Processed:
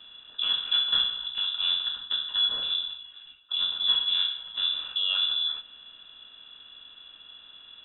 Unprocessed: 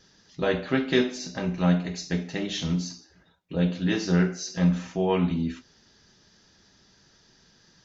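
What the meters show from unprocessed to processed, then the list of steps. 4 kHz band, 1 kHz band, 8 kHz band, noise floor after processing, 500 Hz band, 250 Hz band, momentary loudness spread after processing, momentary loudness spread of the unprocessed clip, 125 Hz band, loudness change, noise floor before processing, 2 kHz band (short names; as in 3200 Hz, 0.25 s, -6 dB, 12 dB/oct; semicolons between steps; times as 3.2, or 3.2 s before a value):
+15.5 dB, -8.5 dB, n/a, -52 dBFS, under -25 dB, under -35 dB, 11 LU, 8 LU, under -35 dB, +1.5 dB, -60 dBFS, -6.0 dB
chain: per-bin compression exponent 0.6; vowel filter u; inverted band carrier 3700 Hz; gain +6.5 dB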